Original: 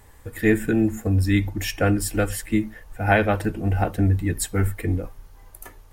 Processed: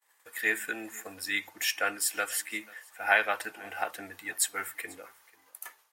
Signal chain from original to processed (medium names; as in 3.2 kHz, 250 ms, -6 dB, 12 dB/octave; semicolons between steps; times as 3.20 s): expander -41 dBFS; high-pass 1.1 kHz 12 dB/octave; delay 489 ms -23.5 dB